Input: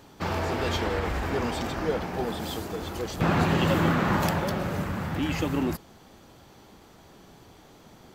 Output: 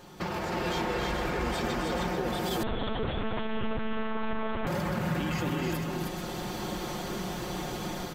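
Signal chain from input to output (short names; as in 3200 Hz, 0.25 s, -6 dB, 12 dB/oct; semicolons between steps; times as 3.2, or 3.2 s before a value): comb 5.6 ms, depth 66%; AGC gain up to 15 dB; limiter -16.5 dBFS, peak gain reduction 15 dB; compressor 2.5:1, threshold -34 dBFS, peak gain reduction 9 dB; tapped delay 0.264/0.313/0.439/0.83 s -8/-3.5/-8/-15.5 dB; 2.63–4.67 monotone LPC vocoder at 8 kHz 220 Hz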